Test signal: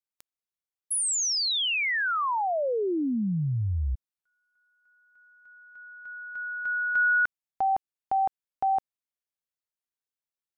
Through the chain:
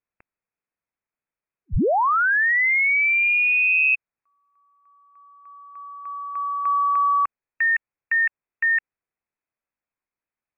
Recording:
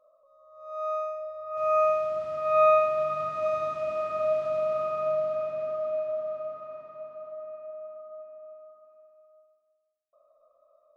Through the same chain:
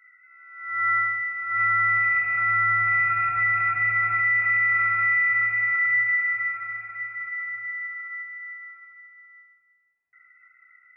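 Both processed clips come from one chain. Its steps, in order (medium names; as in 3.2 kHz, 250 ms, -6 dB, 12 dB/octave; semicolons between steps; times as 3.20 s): peak limiter -24 dBFS; frequency inversion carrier 2.6 kHz; trim +8 dB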